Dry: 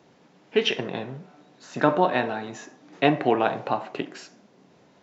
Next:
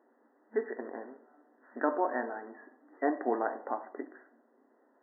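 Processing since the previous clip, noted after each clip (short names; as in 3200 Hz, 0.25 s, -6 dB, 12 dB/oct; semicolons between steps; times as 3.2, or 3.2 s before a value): FFT band-pass 220–2000 Hz; gain -9 dB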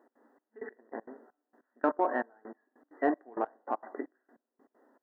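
in parallel at -10 dB: soft clip -23.5 dBFS, distortion -13 dB; on the sum: step gate "x.xxx...x..." 196 bpm -24 dB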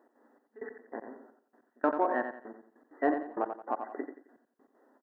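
feedback echo 88 ms, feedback 33%, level -8 dB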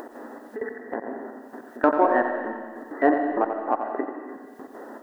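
upward compressor, threshold -34 dBFS; digital reverb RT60 1.5 s, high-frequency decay 0.95×, pre-delay 95 ms, DRR 7 dB; gain +8.5 dB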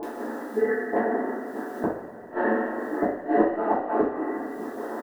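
bands offset in time lows, highs 30 ms, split 940 Hz; flipped gate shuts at -15 dBFS, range -41 dB; two-slope reverb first 0.5 s, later 4.2 s, from -18 dB, DRR -8 dB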